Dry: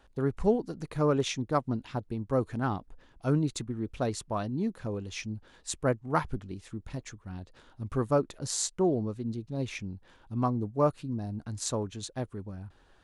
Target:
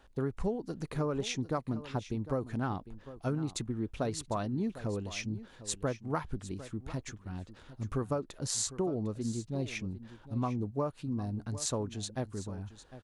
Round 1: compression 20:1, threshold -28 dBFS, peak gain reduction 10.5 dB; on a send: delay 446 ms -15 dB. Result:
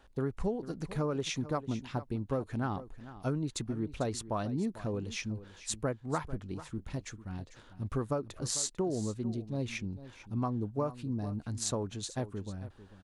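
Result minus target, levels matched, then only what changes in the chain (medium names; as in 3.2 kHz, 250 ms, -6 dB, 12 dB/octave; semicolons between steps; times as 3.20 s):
echo 307 ms early
change: delay 753 ms -15 dB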